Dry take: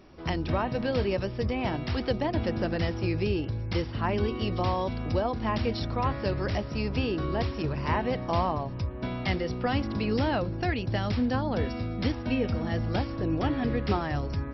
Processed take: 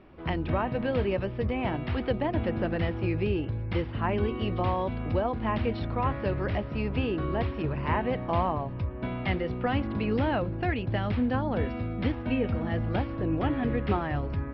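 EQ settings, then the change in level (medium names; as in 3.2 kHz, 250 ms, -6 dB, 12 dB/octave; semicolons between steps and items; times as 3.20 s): low-pass 3.1 kHz 24 dB/octave; 0.0 dB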